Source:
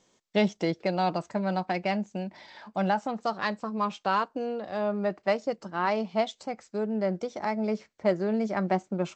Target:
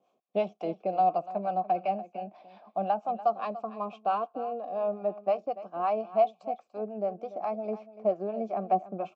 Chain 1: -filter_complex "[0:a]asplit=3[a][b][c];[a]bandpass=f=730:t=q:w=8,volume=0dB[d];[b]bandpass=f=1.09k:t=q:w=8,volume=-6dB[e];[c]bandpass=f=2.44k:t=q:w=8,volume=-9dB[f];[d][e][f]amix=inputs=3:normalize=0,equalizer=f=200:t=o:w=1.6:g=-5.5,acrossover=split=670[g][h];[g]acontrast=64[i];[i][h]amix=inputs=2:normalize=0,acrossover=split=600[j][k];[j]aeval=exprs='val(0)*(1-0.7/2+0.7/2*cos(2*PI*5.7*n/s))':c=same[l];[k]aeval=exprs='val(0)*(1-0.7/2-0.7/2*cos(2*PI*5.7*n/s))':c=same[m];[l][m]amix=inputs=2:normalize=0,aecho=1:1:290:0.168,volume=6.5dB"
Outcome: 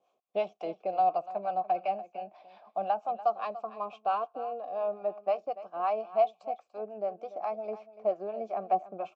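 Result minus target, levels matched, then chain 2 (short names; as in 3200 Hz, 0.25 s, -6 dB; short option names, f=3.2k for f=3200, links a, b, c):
250 Hz band -7.5 dB
-filter_complex "[0:a]asplit=3[a][b][c];[a]bandpass=f=730:t=q:w=8,volume=0dB[d];[b]bandpass=f=1.09k:t=q:w=8,volume=-6dB[e];[c]bandpass=f=2.44k:t=q:w=8,volume=-9dB[f];[d][e][f]amix=inputs=3:normalize=0,equalizer=f=200:t=o:w=1.6:g=5.5,acrossover=split=670[g][h];[g]acontrast=64[i];[i][h]amix=inputs=2:normalize=0,acrossover=split=600[j][k];[j]aeval=exprs='val(0)*(1-0.7/2+0.7/2*cos(2*PI*5.7*n/s))':c=same[l];[k]aeval=exprs='val(0)*(1-0.7/2-0.7/2*cos(2*PI*5.7*n/s))':c=same[m];[l][m]amix=inputs=2:normalize=0,aecho=1:1:290:0.168,volume=6.5dB"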